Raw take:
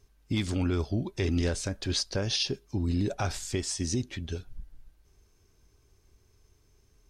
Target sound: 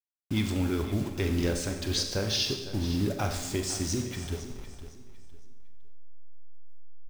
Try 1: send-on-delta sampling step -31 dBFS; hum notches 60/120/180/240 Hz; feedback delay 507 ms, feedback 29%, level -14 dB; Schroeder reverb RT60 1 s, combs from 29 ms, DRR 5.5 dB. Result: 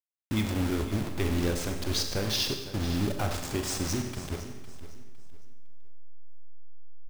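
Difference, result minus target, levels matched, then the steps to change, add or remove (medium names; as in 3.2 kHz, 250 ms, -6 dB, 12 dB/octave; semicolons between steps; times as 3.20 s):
send-on-delta sampling: distortion +8 dB
change: send-on-delta sampling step -39.5 dBFS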